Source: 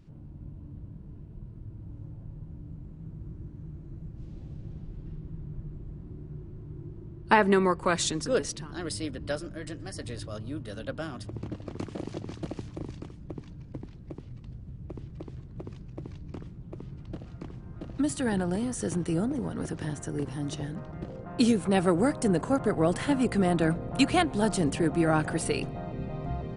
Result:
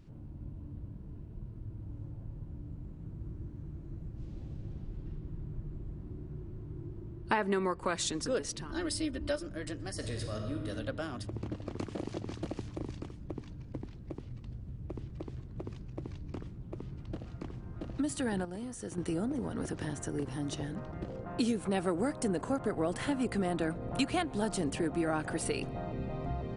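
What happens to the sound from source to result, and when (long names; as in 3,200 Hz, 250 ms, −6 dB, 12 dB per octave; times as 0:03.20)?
0:08.70–0:09.43: comb filter 3.3 ms, depth 80%
0:09.93–0:10.69: thrown reverb, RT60 1.6 s, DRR 3 dB
0:18.45–0:18.98: clip gain −9.5 dB
whole clip: parametric band 160 Hz −5.5 dB 0.32 octaves; downward compressor 2 to 1, threshold −33 dBFS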